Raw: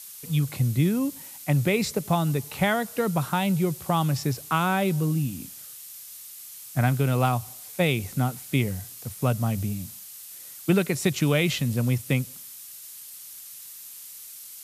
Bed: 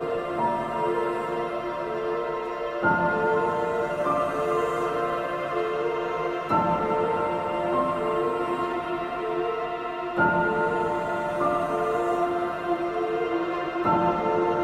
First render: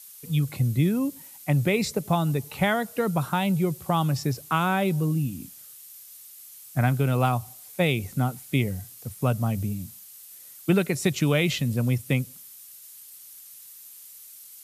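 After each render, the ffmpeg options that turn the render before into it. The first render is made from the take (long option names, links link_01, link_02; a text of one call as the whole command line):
ffmpeg -i in.wav -af "afftdn=noise_reduction=6:noise_floor=-43" out.wav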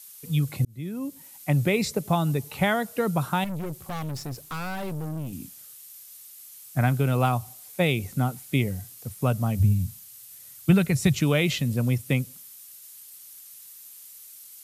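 ffmpeg -i in.wav -filter_complex "[0:a]asettb=1/sr,asplit=3[link_01][link_02][link_03];[link_01]atrim=end=3.444[link_04];[link_02]atrim=start=3.44:end=5.33,asetpts=PTS-STARTPTS,afade=type=in:duration=0.004:curve=qsin,afade=type=out:start_time=1.886:duration=0.004:curve=qsin,aeval=exprs='(tanh(31.6*val(0)+0.5)-tanh(0.5))/31.6':channel_layout=same[link_05];[link_03]atrim=start=5.326[link_06];[link_04][link_05]acrossfade=duration=0.004:curve1=hsin:curve2=qsin[link_07];[link_07][link_06]acrossfade=duration=0.004:curve1=qsin:curve2=hsin,asplit=3[link_08][link_09][link_10];[link_08]afade=type=out:start_time=9.59:duration=0.02[link_11];[link_09]asubboost=boost=6.5:cutoff=120,afade=type=in:start_time=9.59:duration=0.02,afade=type=out:start_time=11.2:duration=0.02[link_12];[link_10]afade=type=in:start_time=11.2:duration=0.02[link_13];[link_11][link_12][link_13]amix=inputs=3:normalize=0,asplit=2[link_14][link_15];[link_14]atrim=end=0.65,asetpts=PTS-STARTPTS,afade=type=out:start_time=0.646:duration=0.004:curve=hsin[link_16];[link_15]atrim=start=0.65,asetpts=PTS-STARTPTS,afade=type=in:duration=0.77[link_17];[link_16][link_17]concat=n=2:v=0:a=1" out.wav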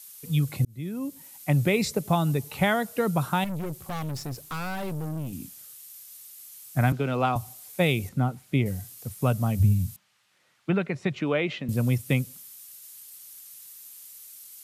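ffmpeg -i in.wav -filter_complex "[0:a]asettb=1/sr,asplit=3[link_01][link_02][link_03];[link_01]atrim=end=6.924[link_04];[link_02]atrim=start=6.92:end=7.36,asetpts=PTS-STARTPTS,afade=type=in:duration=0.004:curve=qsin,afade=type=out:start_time=0.436:duration=0.004:curve=qsin,acrossover=split=170 5800:gain=0.224 1 0.126[link_05][link_06][link_07];[link_05][link_06][link_07]amix=inputs=3:normalize=0[link_08];[link_03]atrim=start=7.356[link_09];[link_04][link_08]acrossfade=duration=0.004:curve1=hsin:curve2=qsin[link_10];[link_10][link_09]acrossfade=duration=0.004:curve1=qsin:curve2=hsin,asettb=1/sr,asplit=3[link_11][link_12][link_13];[link_11]atrim=end=8.094[link_14];[link_12]atrim=start=8.09:end=8.66,asetpts=PTS-STARTPTS,afade=type=in:duration=0.004:curve=qsin,afade=type=out:start_time=0.566:duration=0.004:curve=qsin,lowpass=frequency=2100:poles=1[link_15];[link_13]atrim=start=8.656[link_16];[link_14][link_15]acrossfade=duration=0.004:curve1=hsin:curve2=qsin[link_17];[link_17][link_16]acrossfade=duration=0.004:curve1=qsin:curve2=hsin,asettb=1/sr,asplit=3[link_18][link_19][link_20];[link_18]atrim=end=9.964[link_21];[link_19]atrim=start=9.96:end=11.69,asetpts=PTS-STARTPTS,afade=type=in:duration=0.004:curve=qsin,afade=type=out:start_time=1.726:duration=0.004:curve=qsin,highpass=270,lowpass=2200[link_22];[link_20]atrim=start=11.686[link_23];[link_21][link_22]acrossfade=duration=0.004:curve1=hsin:curve2=qsin[link_24];[link_24][link_23]acrossfade=duration=0.004:curve1=qsin:curve2=hsin" out.wav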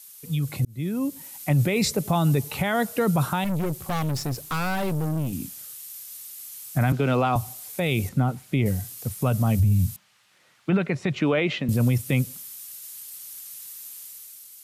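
ffmpeg -i in.wav -af "alimiter=limit=-19.5dB:level=0:latency=1:release=22,dynaudnorm=framelen=140:gausssize=9:maxgain=6dB" out.wav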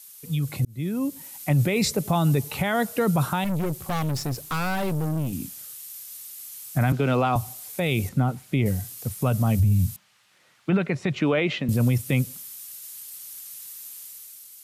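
ffmpeg -i in.wav -af anull out.wav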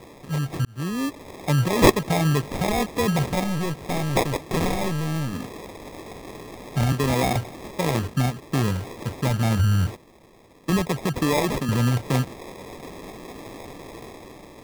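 ffmpeg -i in.wav -af "lowpass=frequency=4800:width_type=q:width=14,acrusher=samples=30:mix=1:aa=0.000001" out.wav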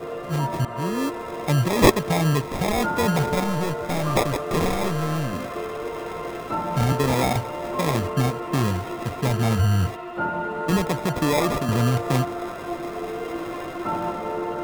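ffmpeg -i in.wav -i bed.wav -filter_complex "[1:a]volume=-4.5dB[link_01];[0:a][link_01]amix=inputs=2:normalize=0" out.wav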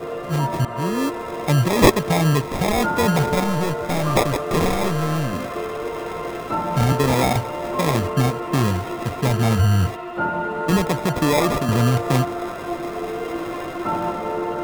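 ffmpeg -i in.wav -af "volume=3dB,alimiter=limit=-3dB:level=0:latency=1" out.wav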